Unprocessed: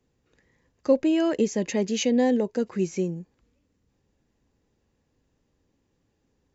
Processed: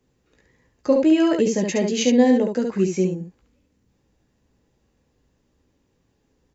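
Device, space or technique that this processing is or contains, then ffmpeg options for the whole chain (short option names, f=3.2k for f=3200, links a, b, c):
slapback doubling: -filter_complex "[0:a]asplit=3[a][b][c];[b]adelay=16,volume=-7dB[d];[c]adelay=70,volume=-4.5dB[e];[a][d][e]amix=inputs=3:normalize=0,volume=3dB"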